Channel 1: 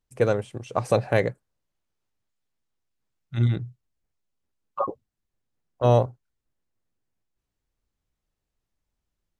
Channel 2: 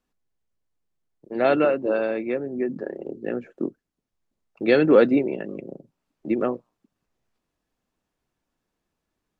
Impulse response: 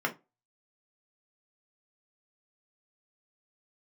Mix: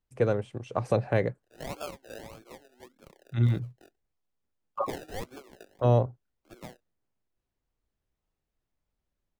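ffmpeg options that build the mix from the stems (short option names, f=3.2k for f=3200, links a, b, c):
-filter_complex "[0:a]lowpass=f=3.6k:p=1,volume=-2dB[a];[1:a]highpass=1.2k,acrusher=samples=32:mix=1:aa=0.000001:lfo=1:lforange=19.2:lforate=1.7,adelay=200,volume=-9dB[b];[a][b]amix=inputs=2:normalize=0,acrossover=split=410[c][d];[d]acompressor=threshold=-31dB:ratio=1.5[e];[c][e]amix=inputs=2:normalize=0"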